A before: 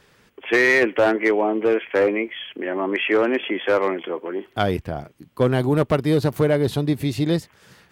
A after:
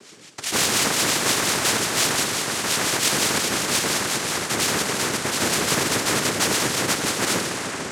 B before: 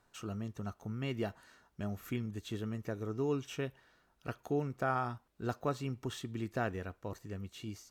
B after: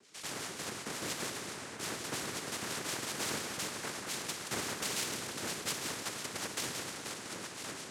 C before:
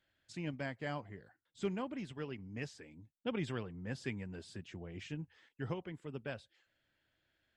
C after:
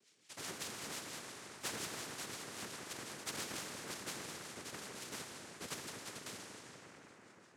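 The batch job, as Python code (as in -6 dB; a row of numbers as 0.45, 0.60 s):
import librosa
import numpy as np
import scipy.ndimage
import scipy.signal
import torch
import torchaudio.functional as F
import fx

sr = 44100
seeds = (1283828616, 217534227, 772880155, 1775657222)

p1 = fx.bit_reversed(x, sr, seeds[0], block=64)
p2 = fx.echo_pitch(p1, sr, ms=451, semitones=5, count=3, db_per_echo=-6.0)
p3 = fx.harmonic_tremolo(p2, sr, hz=5.7, depth_pct=70, crossover_hz=760.0)
p4 = fx.quant_dither(p3, sr, seeds[1], bits=6, dither='none')
p5 = p3 + F.gain(torch.from_numpy(p4), -6.5).numpy()
p6 = fx.rev_plate(p5, sr, seeds[2], rt60_s=3.4, hf_ratio=0.45, predelay_ms=0, drr_db=4.0)
p7 = fx.noise_vocoder(p6, sr, seeds[3], bands=3)
p8 = fx.highpass(p7, sr, hz=250.0, slope=6)
y = fx.spectral_comp(p8, sr, ratio=2.0)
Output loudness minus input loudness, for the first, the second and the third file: +0.5, +1.5, -1.5 LU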